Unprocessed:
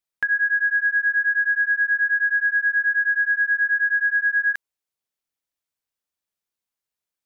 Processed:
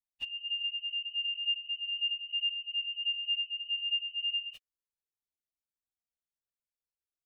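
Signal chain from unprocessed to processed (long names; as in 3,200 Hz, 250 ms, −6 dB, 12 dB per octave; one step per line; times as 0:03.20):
partials spread apart or drawn together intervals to 128%
parametric band 1,700 Hz −9.5 dB 2.3 octaves
flanger whose copies keep moving one way falling 0.54 Hz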